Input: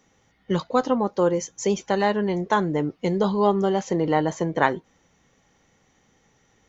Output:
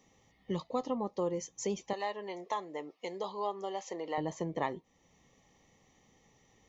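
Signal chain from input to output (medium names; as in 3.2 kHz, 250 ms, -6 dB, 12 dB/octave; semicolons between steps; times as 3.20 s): 1.93–4.18 s: high-pass 570 Hz 12 dB/octave; compression 1.5:1, threshold -42 dBFS, peak gain reduction 10.5 dB; Butterworth band-stop 1.5 kHz, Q 3.1; trim -3.5 dB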